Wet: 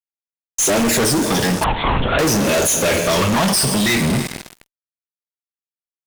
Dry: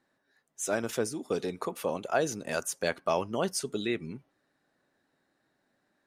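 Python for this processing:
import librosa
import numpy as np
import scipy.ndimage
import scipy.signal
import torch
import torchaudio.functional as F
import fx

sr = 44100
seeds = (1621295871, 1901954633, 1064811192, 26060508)

y = fx.phaser_stages(x, sr, stages=12, low_hz=390.0, high_hz=1700.0, hz=0.48, feedback_pct=30)
y = fx.rev_double_slope(y, sr, seeds[0], early_s=0.26, late_s=2.9, knee_db=-18, drr_db=5.0)
y = fx.fuzz(y, sr, gain_db=53.0, gate_db=-53.0)
y = fx.lpc_vocoder(y, sr, seeds[1], excitation='whisper', order=10, at=(1.64, 2.19))
y = F.gain(torch.from_numpy(y), -1.5).numpy()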